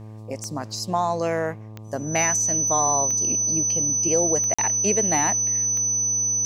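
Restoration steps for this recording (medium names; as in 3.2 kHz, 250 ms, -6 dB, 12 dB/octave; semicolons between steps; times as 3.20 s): de-click; de-hum 108.4 Hz, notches 11; band-stop 6 kHz, Q 30; interpolate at 4.54 s, 45 ms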